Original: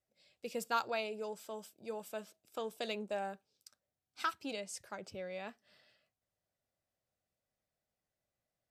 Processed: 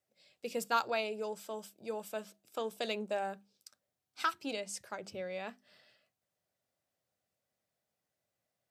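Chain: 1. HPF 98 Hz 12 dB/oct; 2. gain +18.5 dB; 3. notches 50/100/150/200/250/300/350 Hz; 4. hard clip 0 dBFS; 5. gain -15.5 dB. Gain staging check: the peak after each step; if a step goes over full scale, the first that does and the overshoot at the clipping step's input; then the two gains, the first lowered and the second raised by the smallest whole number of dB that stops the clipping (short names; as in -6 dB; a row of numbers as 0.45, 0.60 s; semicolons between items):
-20.5, -2.0, -2.0, -2.0, -17.5 dBFS; no overload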